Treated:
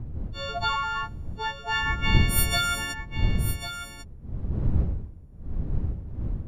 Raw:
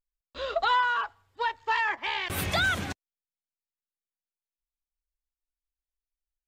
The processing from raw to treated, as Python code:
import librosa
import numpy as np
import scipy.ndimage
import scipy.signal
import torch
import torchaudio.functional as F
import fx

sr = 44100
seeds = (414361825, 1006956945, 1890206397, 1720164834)

p1 = fx.freq_snap(x, sr, grid_st=4)
p2 = fx.dmg_wind(p1, sr, seeds[0], corner_hz=86.0, level_db=-23.0)
p3 = fx.hum_notches(p2, sr, base_hz=50, count=2)
p4 = p3 + fx.echo_single(p3, sr, ms=1096, db=-10.0, dry=0)
y = F.gain(torch.from_numpy(p4), -4.5).numpy()